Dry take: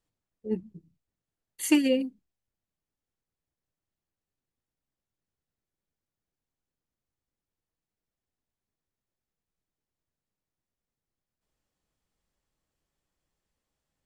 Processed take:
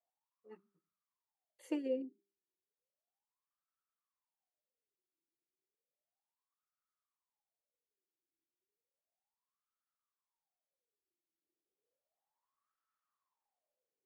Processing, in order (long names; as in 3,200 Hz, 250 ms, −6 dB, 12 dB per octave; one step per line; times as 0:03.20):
spectral tilt +2.5 dB per octave
LFO wah 0.33 Hz 330–1,300 Hz, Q 12
hum removal 199.1 Hz, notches 2
level +9.5 dB